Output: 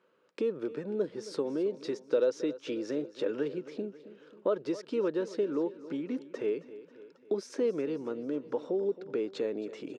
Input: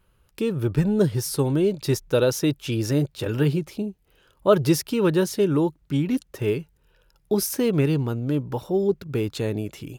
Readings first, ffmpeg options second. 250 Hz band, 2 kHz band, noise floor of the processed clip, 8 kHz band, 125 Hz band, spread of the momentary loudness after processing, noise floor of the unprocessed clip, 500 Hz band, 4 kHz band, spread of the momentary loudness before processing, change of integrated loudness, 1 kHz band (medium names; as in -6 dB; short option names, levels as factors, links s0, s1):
-11.5 dB, -12.5 dB, -61 dBFS, under -20 dB, -26.5 dB, 8 LU, -64 dBFS, -7.0 dB, -14.5 dB, 7 LU, -10.0 dB, -12.5 dB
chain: -af "aemphasis=mode=reproduction:type=75fm,acompressor=threshold=0.0251:ratio=3,highpass=f=250:w=0.5412,highpass=f=250:w=1.3066,equalizer=f=490:t=q:w=4:g=7,equalizer=f=800:t=q:w=4:g=-5,equalizer=f=2900:t=q:w=4:g=-3,lowpass=f=7700:w=0.5412,lowpass=f=7700:w=1.3066,aecho=1:1:270|540|810|1080|1350:0.158|0.0856|0.0462|0.025|0.0135"